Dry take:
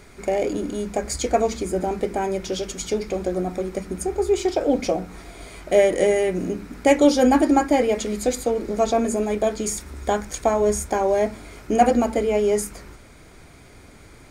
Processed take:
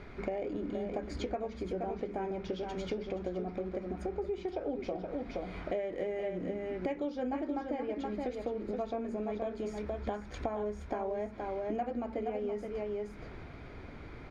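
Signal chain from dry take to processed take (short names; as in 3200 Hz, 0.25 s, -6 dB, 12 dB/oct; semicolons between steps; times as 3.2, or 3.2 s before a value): air absorption 290 m; on a send: echo 0.472 s -8 dB; on the sum: compressor 6:1, threshold -34 dBFS, peak gain reduction 21.5 dB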